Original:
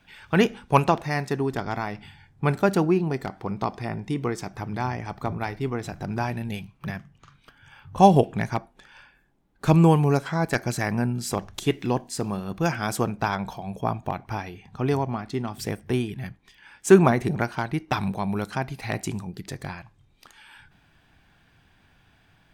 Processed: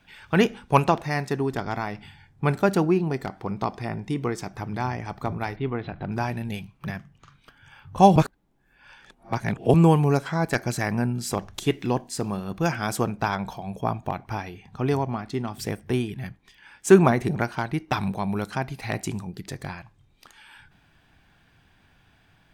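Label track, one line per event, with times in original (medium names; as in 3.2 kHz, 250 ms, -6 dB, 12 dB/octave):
5.560000	6.120000	steep low-pass 3.9 kHz 48 dB/octave
8.160000	9.740000	reverse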